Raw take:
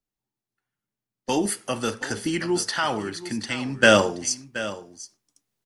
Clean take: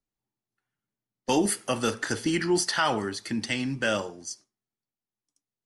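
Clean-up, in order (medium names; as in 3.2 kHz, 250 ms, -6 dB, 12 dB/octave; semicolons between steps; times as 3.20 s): inverse comb 726 ms -14.5 dB; trim 0 dB, from 3.83 s -11.5 dB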